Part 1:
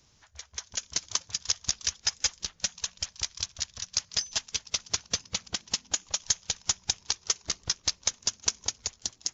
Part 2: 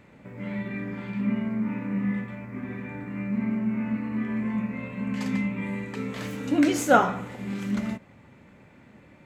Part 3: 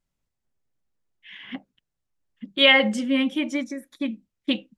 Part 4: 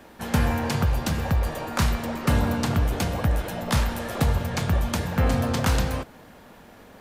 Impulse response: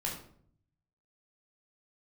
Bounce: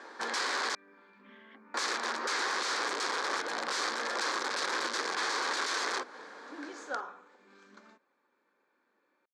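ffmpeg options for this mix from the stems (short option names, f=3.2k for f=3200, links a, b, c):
-filter_complex "[1:a]bandreject=f=2k:w=6.2,volume=-17.5dB[a];[2:a]volume=-17dB[b];[3:a]volume=1dB,asplit=3[c][d][e];[c]atrim=end=0.75,asetpts=PTS-STARTPTS,afade=t=out:st=0.746:d=0.004:c=hsin[f];[d]atrim=start=0.75:end=1.74,asetpts=PTS-STARTPTS,volume=0[g];[e]atrim=start=1.74,asetpts=PTS-STARTPTS,afade=t=in:d=0.004:c=hsin[h];[f][g][h]concat=n=3:v=0:a=1[i];[a][b][i]amix=inputs=3:normalize=0,aeval=exprs='(mod(13.3*val(0)+1,2)-1)/13.3':c=same,highpass=f=350:w=0.5412,highpass=f=350:w=1.3066,equalizer=f=650:t=q:w=4:g=-7,equalizer=f=1.1k:t=q:w=4:g=5,equalizer=f=1.6k:t=q:w=4:g=6,equalizer=f=2.8k:t=q:w=4:g=-9,equalizer=f=4.4k:t=q:w=4:g=4,lowpass=f=6.9k:w=0.5412,lowpass=f=6.9k:w=1.3066,acompressor=threshold=-32dB:ratio=2"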